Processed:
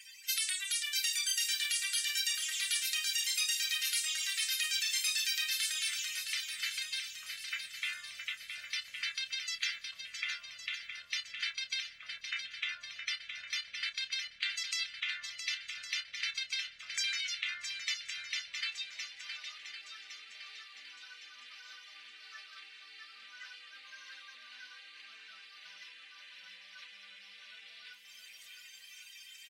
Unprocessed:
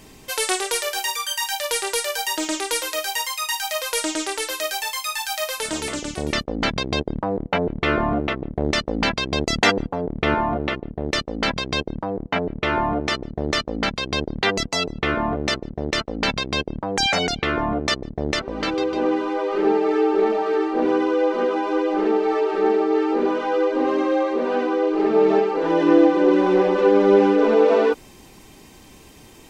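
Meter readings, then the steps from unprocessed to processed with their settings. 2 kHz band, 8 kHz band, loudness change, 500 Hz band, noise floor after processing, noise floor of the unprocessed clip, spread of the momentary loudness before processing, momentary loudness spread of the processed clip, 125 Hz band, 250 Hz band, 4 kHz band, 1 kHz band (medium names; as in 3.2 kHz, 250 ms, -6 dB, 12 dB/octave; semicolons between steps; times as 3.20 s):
-11.0 dB, -6.5 dB, -13.0 dB, under -40 dB, -55 dBFS, -47 dBFS, 9 LU, 20 LU, under -40 dB, under -40 dB, -7.0 dB, -33.5 dB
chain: coarse spectral quantiser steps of 30 dB; compression 12:1, threshold -28 dBFS, peak gain reduction 18 dB; inverse Chebyshev high-pass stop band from 960 Hz, stop band 40 dB; doubling 29 ms -11 dB; shuffle delay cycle 1110 ms, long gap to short 1.5:1, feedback 43%, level -7.5 dB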